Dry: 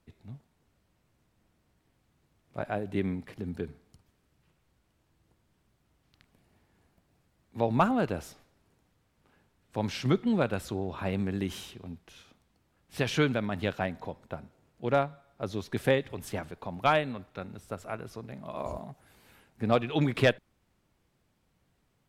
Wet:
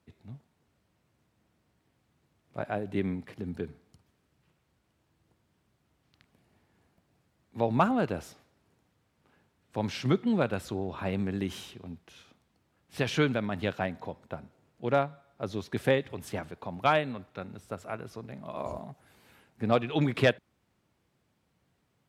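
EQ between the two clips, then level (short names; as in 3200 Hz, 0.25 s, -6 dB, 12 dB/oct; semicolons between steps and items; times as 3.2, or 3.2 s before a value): HPF 74 Hz; high shelf 8100 Hz -4 dB; 0.0 dB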